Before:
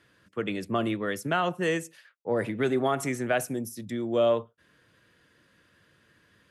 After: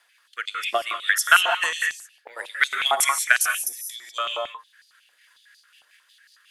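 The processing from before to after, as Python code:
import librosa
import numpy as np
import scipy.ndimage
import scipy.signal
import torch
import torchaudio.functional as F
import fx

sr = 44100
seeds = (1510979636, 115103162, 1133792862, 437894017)

y = fx.tilt_eq(x, sr, slope=4.0)
y = fx.transient(y, sr, attack_db=11, sustain_db=-4)
y = fx.rotary_switch(y, sr, hz=0.6, then_hz=5.5, switch_at_s=4.81)
y = fx.rev_gated(y, sr, seeds[0], gate_ms=220, shape='rising', drr_db=3.5)
y = fx.filter_held_highpass(y, sr, hz=11.0, low_hz=780.0, high_hz=4600.0)
y = y * 10.0 ** (-1.0 / 20.0)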